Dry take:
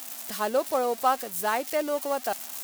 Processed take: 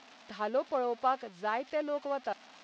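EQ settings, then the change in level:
Bessel low-pass filter 3,100 Hz, order 8
−5.5 dB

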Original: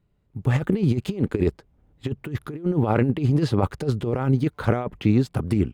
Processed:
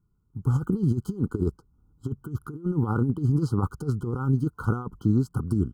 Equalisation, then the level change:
linear-phase brick-wall band-stop 1,500–3,000 Hz
phaser with its sweep stopped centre 1,500 Hz, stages 4
−1.5 dB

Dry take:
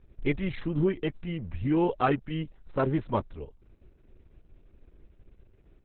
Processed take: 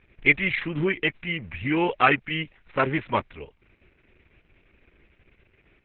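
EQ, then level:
low-pass with resonance 2,300 Hz, resonance Q 3
spectral tilt +4.5 dB per octave
low-shelf EQ 240 Hz +10 dB
+4.0 dB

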